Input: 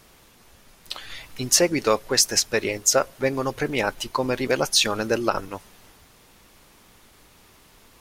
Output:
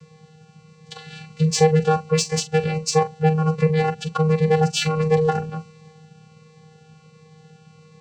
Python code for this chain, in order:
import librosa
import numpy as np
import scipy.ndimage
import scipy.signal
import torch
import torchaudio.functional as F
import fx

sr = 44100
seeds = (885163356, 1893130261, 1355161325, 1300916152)

p1 = fx.vocoder(x, sr, bands=8, carrier='square', carrier_hz=157.0)
p2 = 10.0 ** (-24.0 / 20.0) * np.tanh(p1 / 10.0 ** (-24.0 / 20.0))
p3 = p1 + (p2 * 10.0 ** (-7.0 / 20.0))
p4 = fx.doubler(p3, sr, ms=42.0, db=-12)
p5 = fx.notch_cascade(p4, sr, direction='falling', hz=1.4)
y = p5 * 10.0 ** (4.0 / 20.0)